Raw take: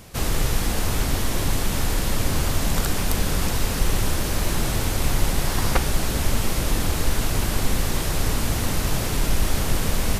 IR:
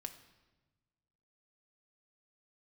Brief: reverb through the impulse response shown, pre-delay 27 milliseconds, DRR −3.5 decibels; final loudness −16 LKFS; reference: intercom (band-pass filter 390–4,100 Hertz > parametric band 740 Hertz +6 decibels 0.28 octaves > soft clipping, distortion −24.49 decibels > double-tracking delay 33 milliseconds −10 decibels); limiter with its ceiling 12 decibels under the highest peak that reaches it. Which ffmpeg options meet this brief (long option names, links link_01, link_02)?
-filter_complex "[0:a]alimiter=limit=-17dB:level=0:latency=1,asplit=2[link_01][link_02];[1:a]atrim=start_sample=2205,adelay=27[link_03];[link_02][link_03]afir=irnorm=-1:irlink=0,volume=7dB[link_04];[link_01][link_04]amix=inputs=2:normalize=0,highpass=390,lowpass=4100,equalizer=frequency=740:width_type=o:width=0.28:gain=6,asoftclip=threshold=-18.5dB,asplit=2[link_05][link_06];[link_06]adelay=33,volume=-10dB[link_07];[link_05][link_07]amix=inputs=2:normalize=0,volume=13dB"